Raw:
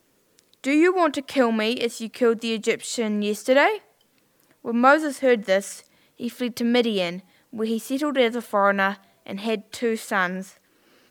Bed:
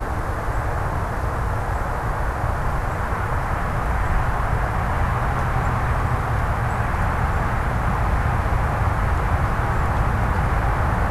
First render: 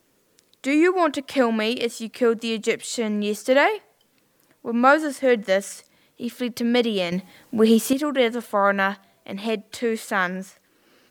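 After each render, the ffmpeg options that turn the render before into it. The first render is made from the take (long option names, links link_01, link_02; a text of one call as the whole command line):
ffmpeg -i in.wav -filter_complex "[0:a]asplit=3[link_01][link_02][link_03];[link_01]atrim=end=7.122[link_04];[link_02]atrim=start=7.118:end=7.932,asetpts=PTS-STARTPTS,volume=9dB[link_05];[link_03]atrim=start=7.928[link_06];[link_04][link_05]acrossfade=duration=0.004:curve1=hsin:curve2=hsin[link_07];[link_07][link_06]acrossfade=duration=0.004:curve1=hsin:curve2=hsin" out.wav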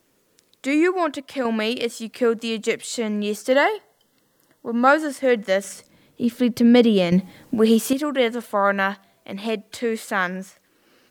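ffmpeg -i in.wav -filter_complex "[0:a]asettb=1/sr,asplit=3[link_01][link_02][link_03];[link_01]atrim=end=3.524[link_04];[link_02]atrim=start=3.52:end=4.88,asetpts=PTS-STARTPTS,afade=type=in:duration=0.004:curve=qsin,afade=type=out:start_time=1.356:duration=0.004:curve=qsin,asuperstop=centerf=2400:order=8:qfactor=4.5[link_05];[link_03]atrim=start=4.876[link_06];[link_04][link_05]acrossfade=duration=0.004:curve1=hsin:curve2=qsin[link_07];[link_07][link_06]acrossfade=duration=0.004:curve1=qsin:curve2=hsin,asettb=1/sr,asplit=3[link_08][link_09][link_10];[link_08]atrim=end=5.644[link_11];[link_09]atrim=start=5.64:end=7.55,asetpts=PTS-STARTPTS,afade=type=in:duration=0.004:curve=qsin,afade=type=out:start_time=1.906:duration=0.004:curve=qsin,lowshelf=frequency=450:gain=10.5[link_12];[link_10]atrim=start=7.546[link_13];[link_11][link_12]acrossfade=duration=0.004:curve1=hsin:curve2=qsin[link_14];[link_14][link_13]acrossfade=duration=0.004:curve1=qsin:curve2=hsin,asplit=2[link_15][link_16];[link_15]atrim=end=1.45,asetpts=PTS-STARTPTS,afade=type=out:start_time=0.74:duration=0.71:silence=0.473151[link_17];[link_16]atrim=start=1.45,asetpts=PTS-STARTPTS,afade=type=in:duration=0.004:curve=hsin:silence=0.473151[link_18];[link_17][link_18]concat=n=2:v=0:a=1" out.wav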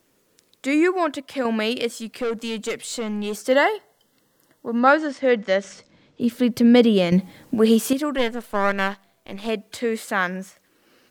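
ffmpeg -i in.wav -filter_complex "[0:a]asettb=1/sr,asplit=3[link_01][link_02][link_03];[link_01]atrim=end=1.954[link_04];[link_02]atrim=start=1.95:end=3.34,asetpts=PTS-STARTPTS,afade=type=in:duration=0.004:curve=qsin,afade=type=out:start_time=1.386:duration=0.004:curve=qsin,aeval=exprs='(tanh(11.2*val(0)+0.1)-tanh(0.1))/11.2':channel_layout=same[link_05];[link_03]atrim=start=3.336[link_06];[link_04][link_05]acrossfade=duration=0.004:curve1=hsin:curve2=qsin[link_07];[link_07][link_06]acrossfade=duration=0.004:curve1=qsin:curve2=hsin,asettb=1/sr,asplit=3[link_08][link_09][link_10];[link_08]atrim=end=4.794[link_11];[link_09]atrim=start=4.79:end=6.21,asetpts=PTS-STARTPTS,afade=type=in:duration=0.004:curve=qsin,afade=type=out:start_time=1.416:duration=0.004:curve=qsin,lowpass=frequency=6100:width=0.5412,lowpass=frequency=6100:width=1.3066[link_12];[link_10]atrim=start=6.206[link_13];[link_11][link_12]acrossfade=duration=0.004:curve1=hsin:curve2=qsin[link_14];[link_14][link_13]acrossfade=duration=0.004:curve1=qsin:curve2=hsin,asplit=3[link_15][link_16][link_17];[link_15]afade=type=out:start_time=8.17:duration=0.02[link_18];[link_16]aeval=exprs='if(lt(val(0),0),0.251*val(0),val(0))':channel_layout=same,afade=type=in:start_time=8.17:duration=0.02,afade=type=out:start_time=9.47:duration=0.02[link_19];[link_17]afade=type=in:start_time=9.47:duration=0.02[link_20];[link_18][link_19][link_20]amix=inputs=3:normalize=0" out.wav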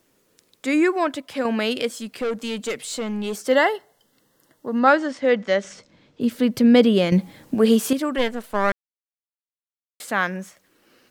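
ffmpeg -i in.wav -filter_complex "[0:a]asplit=3[link_01][link_02][link_03];[link_01]atrim=end=8.72,asetpts=PTS-STARTPTS,afade=type=out:start_time=8.716:duration=0.004:curve=hsin[link_04];[link_02]atrim=start=8.72:end=10,asetpts=PTS-STARTPTS,volume=0[link_05];[link_03]atrim=start=10,asetpts=PTS-STARTPTS,afade=type=in:duration=0.004:curve=hsin[link_06];[link_04][link_05][link_06]concat=n=3:v=0:a=1" out.wav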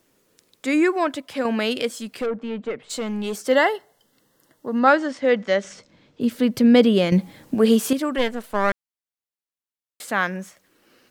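ffmpeg -i in.wav -filter_complex "[0:a]asplit=3[link_01][link_02][link_03];[link_01]afade=type=out:start_time=2.25:duration=0.02[link_04];[link_02]lowpass=1600,afade=type=in:start_time=2.25:duration=0.02,afade=type=out:start_time=2.89:duration=0.02[link_05];[link_03]afade=type=in:start_time=2.89:duration=0.02[link_06];[link_04][link_05][link_06]amix=inputs=3:normalize=0" out.wav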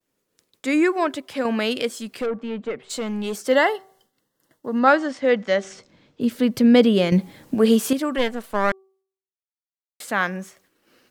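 ffmpeg -i in.wav -af "agate=range=-33dB:threshold=-55dB:ratio=3:detection=peak,bandreject=frequency=383.7:width_type=h:width=4,bandreject=frequency=767.4:width_type=h:width=4,bandreject=frequency=1151.1:width_type=h:width=4" out.wav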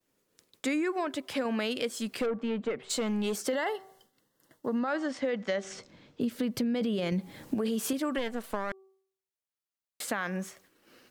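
ffmpeg -i in.wav -af "alimiter=limit=-13.5dB:level=0:latency=1:release=11,acompressor=threshold=-28dB:ratio=5" out.wav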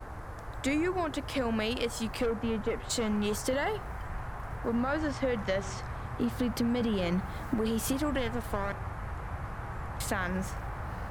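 ffmpeg -i in.wav -i bed.wav -filter_complex "[1:a]volume=-17.5dB[link_01];[0:a][link_01]amix=inputs=2:normalize=0" out.wav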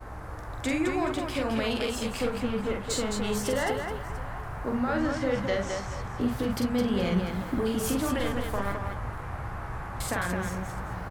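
ffmpeg -i in.wav -filter_complex "[0:a]asplit=2[link_01][link_02];[link_02]adelay=16,volume=-12dB[link_03];[link_01][link_03]amix=inputs=2:normalize=0,aecho=1:1:45|213|426|693:0.631|0.562|0.168|0.112" out.wav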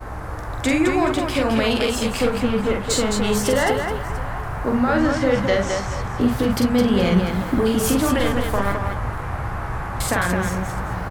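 ffmpeg -i in.wav -af "volume=9dB" out.wav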